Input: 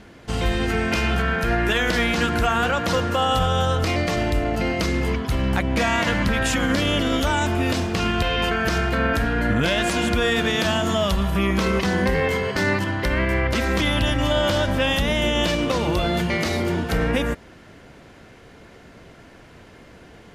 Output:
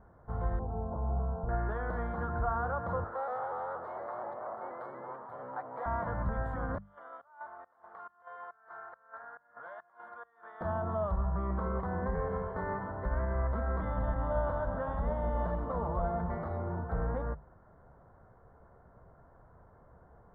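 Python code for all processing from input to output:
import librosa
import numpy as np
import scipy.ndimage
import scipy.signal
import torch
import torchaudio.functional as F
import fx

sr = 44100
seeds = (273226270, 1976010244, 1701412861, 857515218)

y = fx.chain(x, sr, fx.steep_lowpass(hz=1000.0, slope=36),
    fx.hum_notches(base_hz=50, count=9), at=(0.59, 1.49))
y = fx.chain(y, sr, fx.lower_of_two(delay_ms=8.1),
    fx.highpass(hz=450.0, slope=12),
    fx.vibrato_shape(shape='saw_up', rate_hz=4.2, depth_cents=100.0), at=(3.04, 5.86))
y = fx.chain(y, sr, fx.highpass(hz=1200.0, slope=12),
    fx.high_shelf(hz=2200.0, db=-8.5),
    fx.volume_shaper(bpm=139, per_beat=1, depth_db=-24, release_ms=192.0, shape='slow start'), at=(6.78, 10.61))
y = fx.chain(y, sr, fx.comb(ms=4.5, depth=0.39),
    fx.echo_split(split_hz=970.0, low_ms=272, high_ms=134, feedback_pct=52, wet_db=-10), at=(12.02, 16.39))
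y = scipy.signal.sosfilt(scipy.signal.cheby2(4, 40, 2400.0, 'lowpass', fs=sr, output='sos'), y)
y = fx.peak_eq(y, sr, hz=290.0, db=-15.0, octaves=1.4)
y = fx.hum_notches(y, sr, base_hz=50, count=4)
y = y * librosa.db_to_amplitude(-6.0)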